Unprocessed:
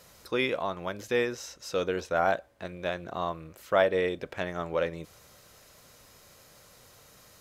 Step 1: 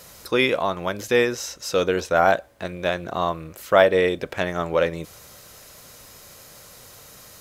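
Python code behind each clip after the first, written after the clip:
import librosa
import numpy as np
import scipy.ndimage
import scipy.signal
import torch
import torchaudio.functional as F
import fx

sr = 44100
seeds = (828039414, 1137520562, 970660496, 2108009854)

y = fx.high_shelf(x, sr, hz=6800.0, db=5.5)
y = y * librosa.db_to_amplitude(8.0)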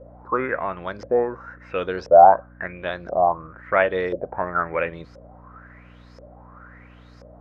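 y = fx.filter_lfo_lowpass(x, sr, shape='saw_up', hz=0.97, low_hz=520.0, high_hz=5300.0, q=7.9)
y = fx.high_shelf_res(y, sr, hz=2400.0, db=-12.5, q=1.5)
y = fx.dmg_buzz(y, sr, base_hz=60.0, harmonics=5, level_db=-42.0, tilt_db=-4, odd_only=False)
y = y * librosa.db_to_amplitude(-6.0)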